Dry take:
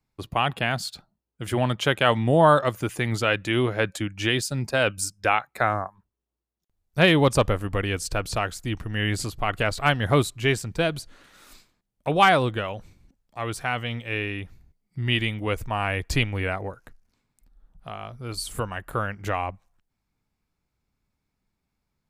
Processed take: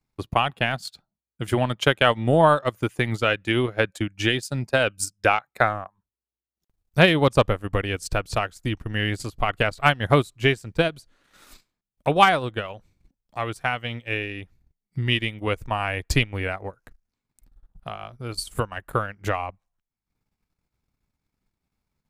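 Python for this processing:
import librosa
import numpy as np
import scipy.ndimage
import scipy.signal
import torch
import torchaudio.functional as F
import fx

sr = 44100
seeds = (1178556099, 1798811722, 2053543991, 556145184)

y = fx.transient(x, sr, attack_db=6, sustain_db=-11)
y = F.gain(torch.from_numpy(y), -1.0).numpy()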